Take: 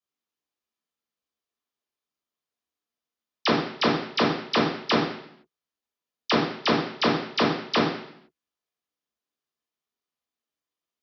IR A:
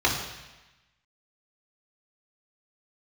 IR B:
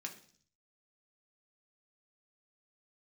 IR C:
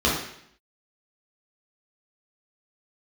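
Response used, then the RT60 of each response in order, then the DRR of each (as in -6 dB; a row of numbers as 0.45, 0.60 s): C; 1.1, 0.50, 0.70 s; -4.0, 1.0, -6.0 dB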